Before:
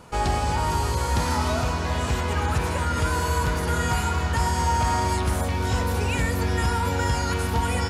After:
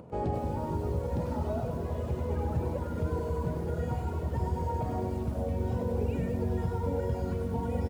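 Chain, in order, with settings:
high-pass filter 93 Hz 12 dB per octave
mains-hum notches 50/100/150/200/250/300/350/400 Hz
reverb reduction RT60 1.8 s
drawn EQ curve 120 Hz 0 dB, 570 Hz −2 dB, 1,300 Hz −20 dB, 2,700 Hz −23 dB, 5,900 Hz −29 dB
in parallel at −1 dB: brickwall limiter −26 dBFS, peak gain reduction 7 dB
on the sum: upward compression, threshold −40 dBFS
on a send: repeating echo 99 ms, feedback 48%, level −6.5 dB
on the sum: feedback echo at a low word length 211 ms, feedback 55%, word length 7 bits, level −13 dB
level −4.5 dB

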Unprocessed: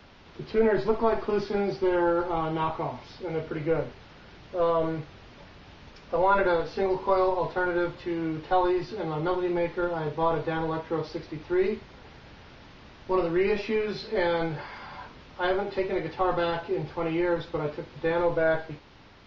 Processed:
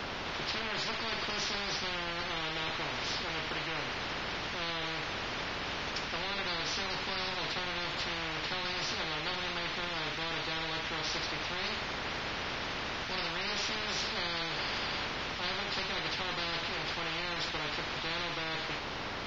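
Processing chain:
every bin compressed towards the loudest bin 10 to 1
level −8.5 dB

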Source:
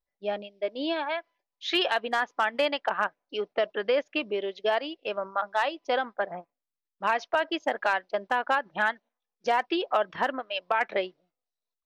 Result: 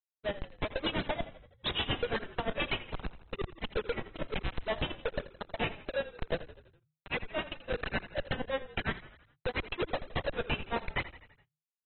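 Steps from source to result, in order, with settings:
sub-octave generator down 1 octave, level −6 dB
flat-topped bell 1,100 Hz −10.5 dB
in parallel at +2 dB: downward compressor 16 to 1, threshold −35 dBFS, peak gain reduction 15 dB
on the sum: notch comb filter 200 Hz
auto-filter high-pass square 2.3 Hz 530–2,100 Hz
bit reduction 12 bits
pitch vibrato 1.7 Hz 87 cents
comparator with hysteresis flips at −30 dBFS
granular cloud 111 ms, grains 8.6 per second, spray 12 ms, pitch spread up and down by 0 semitones
on a send: echo with shifted repeats 83 ms, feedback 55%, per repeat −31 Hz, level −15 dB
on the sum: AAC 16 kbit/s 24,000 Hz

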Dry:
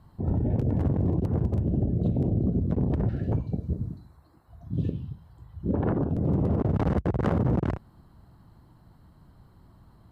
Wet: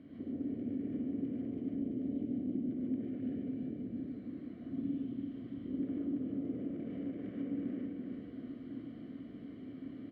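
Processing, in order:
compressor on every frequency bin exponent 0.6
parametric band 630 Hz +14.5 dB 1.9 octaves
downward compressor 6 to 1, threshold −26 dBFS, peak gain reduction 15.5 dB
formant filter i
repeating echo 335 ms, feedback 59%, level −5 dB
reverb whose tail is shaped and stops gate 170 ms rising, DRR −4.5 dB
level −4.5 dB

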